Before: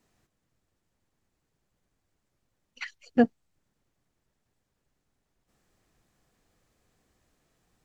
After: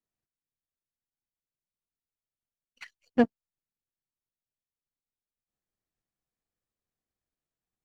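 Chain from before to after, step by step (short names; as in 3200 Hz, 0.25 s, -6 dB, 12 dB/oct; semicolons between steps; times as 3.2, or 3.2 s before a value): power-law curve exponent 1.4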